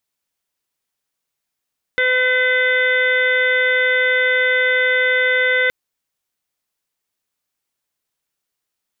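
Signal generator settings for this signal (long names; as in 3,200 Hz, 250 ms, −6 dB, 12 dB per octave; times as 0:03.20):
steady harmonic partials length 3.72 s, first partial 507 Hz, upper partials −18/1.5/3.5/−15/−15/−8 dB, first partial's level −20 dB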